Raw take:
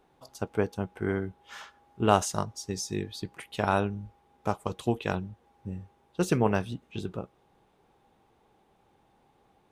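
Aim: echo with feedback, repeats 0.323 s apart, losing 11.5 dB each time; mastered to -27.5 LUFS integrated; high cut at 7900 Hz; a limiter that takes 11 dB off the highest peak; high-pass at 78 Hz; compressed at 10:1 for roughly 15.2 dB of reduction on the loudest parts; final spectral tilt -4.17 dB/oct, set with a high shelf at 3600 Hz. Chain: HPF 78 Hz; LPF 7900 Hz; high shelf 3600 Hz +5.5 dB; compressor 10:1, threshold -30 dBFS; limiter -26.5 dBFS; feedback echo 0.323 s, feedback 27%, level -11.5 dB; gain +13.5 dB

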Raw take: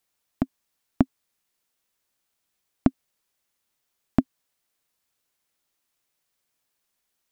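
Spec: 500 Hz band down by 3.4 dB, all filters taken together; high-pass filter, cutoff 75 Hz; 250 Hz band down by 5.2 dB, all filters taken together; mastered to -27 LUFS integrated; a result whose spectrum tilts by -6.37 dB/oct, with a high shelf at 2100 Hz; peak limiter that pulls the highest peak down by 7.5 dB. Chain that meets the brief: HPF 75 Hz; bell 250 Hz -5 dB; bell 500 Hz -4 dB; high shelf 2100 Hz +5.5 dB; gain +12 dB; limiter -2.5 dBFS

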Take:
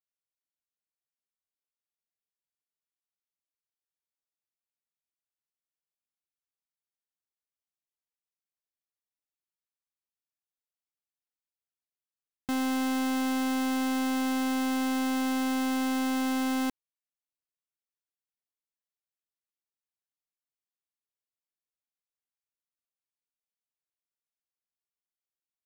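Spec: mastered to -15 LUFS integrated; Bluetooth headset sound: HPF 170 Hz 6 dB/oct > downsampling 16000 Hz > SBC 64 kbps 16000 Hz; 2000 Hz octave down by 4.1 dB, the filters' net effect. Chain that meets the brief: HPF 170 Hz 6 dB/oct; bell 2000 Hz -5.5 dB; downsampling 16000 Hz; gain +15.5 dB; SBC 64 kbps 16000 Hz

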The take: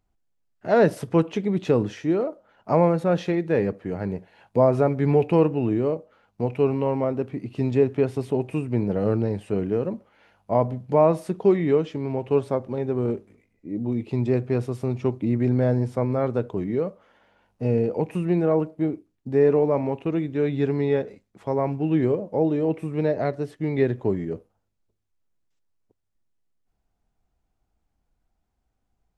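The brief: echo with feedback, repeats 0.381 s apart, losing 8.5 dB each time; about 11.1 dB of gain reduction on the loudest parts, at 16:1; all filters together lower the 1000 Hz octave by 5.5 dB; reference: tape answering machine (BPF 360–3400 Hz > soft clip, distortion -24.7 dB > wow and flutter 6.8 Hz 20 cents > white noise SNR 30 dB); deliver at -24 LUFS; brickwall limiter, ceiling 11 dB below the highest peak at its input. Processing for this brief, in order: bell 1000 Hz -7.5 dB; compressor 16:1, threshold -25 dBFS; limiter -26.5 dBFS; BPF 360–3400 Hz; feedback echo 0.381 s, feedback 38%, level -8.5 dB; soft clip -28 dBFS; wow and flutter 6.8 Hz 20 cents; white noise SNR 30 dB; gain +17 dB

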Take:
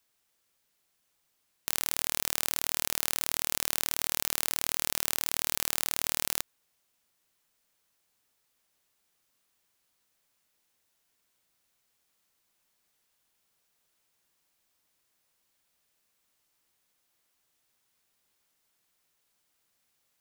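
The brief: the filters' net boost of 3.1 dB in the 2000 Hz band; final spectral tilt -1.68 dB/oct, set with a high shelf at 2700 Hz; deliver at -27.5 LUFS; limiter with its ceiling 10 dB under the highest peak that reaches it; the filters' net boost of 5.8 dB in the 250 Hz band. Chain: bell 250 Hz +7.5 dB; bell 2000 Hz +7 dB; high shelf 2700 Hz -7.5 dB; gain +16.5 dB; limiter -0.5 dBFS

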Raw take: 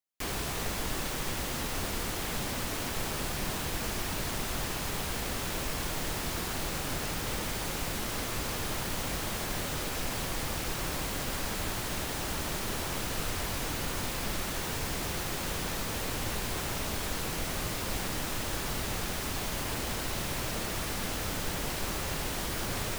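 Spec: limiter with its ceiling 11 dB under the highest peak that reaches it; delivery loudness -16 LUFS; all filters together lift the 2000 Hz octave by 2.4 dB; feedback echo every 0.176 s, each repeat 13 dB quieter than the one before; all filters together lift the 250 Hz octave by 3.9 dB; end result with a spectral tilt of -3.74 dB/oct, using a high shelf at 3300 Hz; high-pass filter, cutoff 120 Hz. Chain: HPF 120 Hz; bell 250 Hz +5.5 dB; bell 2000 Hz +4.5 dB; high shelf 3300 Hz -5 dB; limiter -31.5 dBFS; feedback echo 0.176 s, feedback 22%, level -13 dB; gain +23.5 dB

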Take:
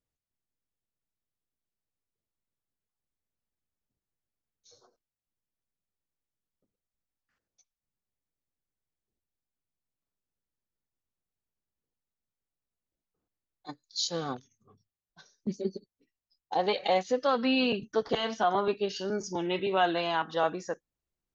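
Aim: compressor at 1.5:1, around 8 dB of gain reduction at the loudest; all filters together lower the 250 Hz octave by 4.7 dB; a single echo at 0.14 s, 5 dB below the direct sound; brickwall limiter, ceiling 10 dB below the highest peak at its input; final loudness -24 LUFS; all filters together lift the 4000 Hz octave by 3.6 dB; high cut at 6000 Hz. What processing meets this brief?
LPF 6000 Hz; bell 250 Hz -6 dB; bell 4000 Hz +5.5 dB; compressor 1.5:1, threshold -44 dBFS; limiter -31.5 dBFS; echo 0.14 s -5 dB; gain +17 dB

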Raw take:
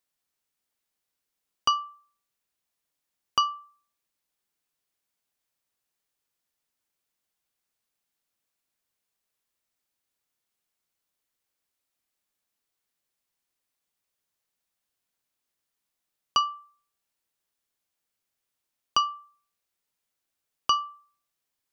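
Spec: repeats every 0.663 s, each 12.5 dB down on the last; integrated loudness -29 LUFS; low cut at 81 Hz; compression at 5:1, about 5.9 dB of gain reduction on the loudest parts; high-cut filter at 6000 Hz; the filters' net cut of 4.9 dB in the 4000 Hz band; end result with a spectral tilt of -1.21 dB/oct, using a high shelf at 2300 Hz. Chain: HPF 81 Hz; LPF 6000 Hz; high shelf 2300 Hz -3.5 dB; bell 4000 Hz -4 dB; compressor 5:1, threshold -26 dBFS; feedback echo 0.663 s, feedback 24%, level -12.5 dB; gain +8.5 dB

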